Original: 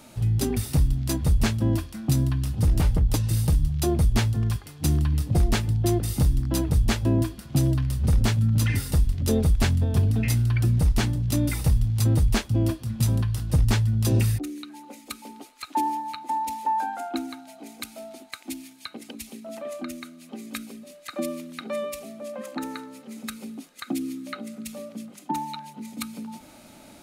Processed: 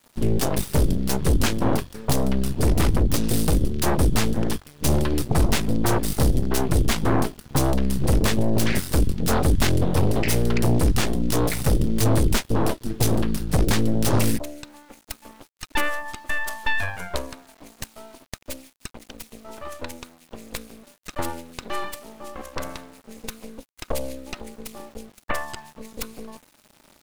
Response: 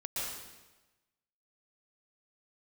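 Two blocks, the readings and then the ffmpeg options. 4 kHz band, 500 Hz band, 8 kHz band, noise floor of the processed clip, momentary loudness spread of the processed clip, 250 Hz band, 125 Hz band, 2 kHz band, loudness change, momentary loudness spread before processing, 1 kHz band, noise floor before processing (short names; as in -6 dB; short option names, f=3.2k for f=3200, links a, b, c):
+4.5 dB, +6.0 dB, +5.0 dB, -58 dBFS, 18 LU, +3.0 dB, -2.5 dB, +7.0 dB, +1.0 dB, 17 LU, +1.0 dB, -49 dBFS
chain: -af "aeval=exprs='val(0)*gte(abs(val(0)),0.00631)':c=same,aeval=exprs='0.282*(cos(1*acos(clip(val(0)/0.282,-1,1)))-cos(1*PI/2))+0.0708*(cos(7*acos(clip(val(0)/0.282,-1,1)))-cos(7*PI/2))+0.1*(cos(8*acos(clip(val(0)/0.282,-1,1)))-cos(8*PI/2))':c=same,volume=-2dB"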